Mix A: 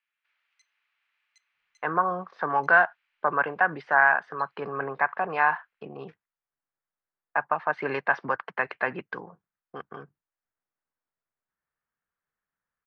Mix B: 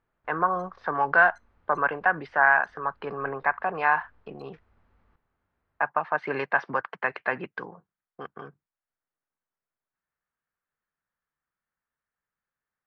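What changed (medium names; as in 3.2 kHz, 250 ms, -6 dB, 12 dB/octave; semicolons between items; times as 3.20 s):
speech: entry -1.55 s; background: remove resonant high-pass 2.5 kHz, resonance Q 2.5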